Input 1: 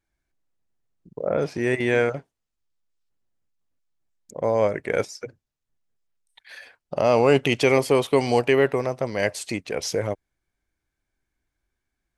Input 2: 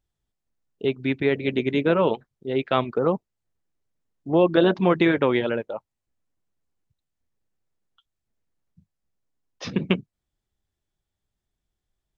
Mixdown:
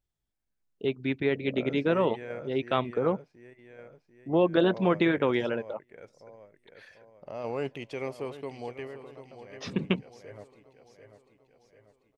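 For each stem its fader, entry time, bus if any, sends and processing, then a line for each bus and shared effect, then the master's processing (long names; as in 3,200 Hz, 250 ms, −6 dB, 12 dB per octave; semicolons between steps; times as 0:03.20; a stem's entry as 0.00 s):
0:06.66 −5.5 dB → 0:07.21 −14 dB, 0.30 s, no send, echo send −14 dB, high-shelf EQ 5,200 Hz −10 dB; sample-and-hold tremolo; automatic ducking −10 dB, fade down 1.60 s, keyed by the second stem
−5.0 dB, 0.00 s, no send, no echo send, no processing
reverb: not used
echo: repeating echo 742 ms, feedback 49%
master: no processing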